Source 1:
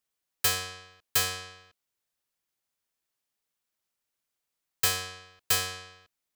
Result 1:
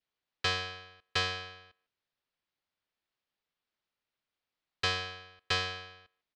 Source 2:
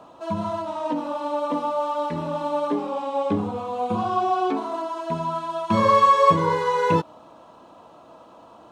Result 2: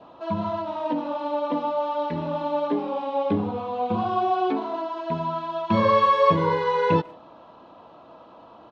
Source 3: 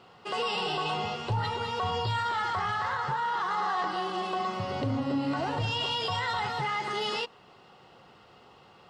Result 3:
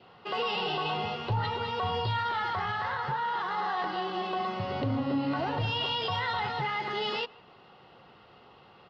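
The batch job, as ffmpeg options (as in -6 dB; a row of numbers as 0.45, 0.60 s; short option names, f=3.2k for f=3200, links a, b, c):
-filter_complex "[0:a]lowpass=f=4.5k:w=0.5412,lowpass=f=4.5k:w=1.3066,adynamicequalizer=threshold=0.01:dfrequency=1200:dqfactor=3.8:tfrequency=1200:tqfactor=3.8:attack=5:release=100:ratio=0.375:range=2.5:mode=cutabove:tftype=bell,asplit=2[a][b];[b]adelay=150,highpass=300,lowpass=3.4k,asoftclip=type=hard:threshold=-16dB,volume=-24dB[c];[a][c]amix=inputs=2:normalize=0"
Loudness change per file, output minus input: -5.5, -1.5, -0.5 LU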